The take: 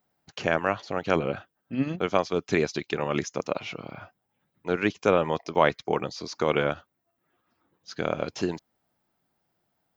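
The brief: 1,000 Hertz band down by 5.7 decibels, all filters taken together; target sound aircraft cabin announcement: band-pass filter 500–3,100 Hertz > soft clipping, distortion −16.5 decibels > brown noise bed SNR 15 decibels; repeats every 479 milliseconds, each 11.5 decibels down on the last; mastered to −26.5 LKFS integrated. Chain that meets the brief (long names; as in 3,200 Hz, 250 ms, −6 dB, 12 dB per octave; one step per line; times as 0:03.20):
band-pass filter 500–3,100 Hz
parametric band 1,000 Hz −7 dB
repeating echo 479 ms, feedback 27%, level −11.5 dB
soft clipping −17.5 dBFS
brown noise bed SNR 15 dB
level +8 dB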